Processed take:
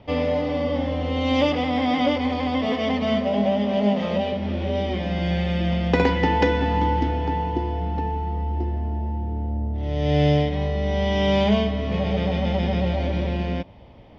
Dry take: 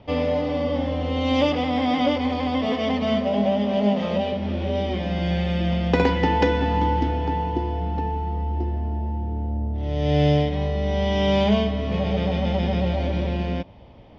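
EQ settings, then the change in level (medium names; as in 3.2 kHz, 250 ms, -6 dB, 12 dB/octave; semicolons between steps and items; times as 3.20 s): peaking EQ 2 kHz +2.5 dB 0.33 oct; 0.0 dB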